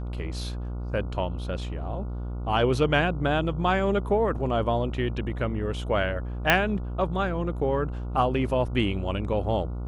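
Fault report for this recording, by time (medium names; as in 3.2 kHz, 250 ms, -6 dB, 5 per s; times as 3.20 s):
buzz 60 Hz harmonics 24 -32 dBFS
6.50 s: pop -4 dBFS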